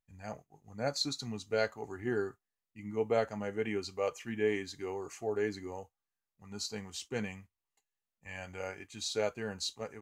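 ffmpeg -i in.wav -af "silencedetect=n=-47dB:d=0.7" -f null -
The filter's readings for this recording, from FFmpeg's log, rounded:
silence_start: 7.41
silence_end: 8.25 | silence_duration: 0.84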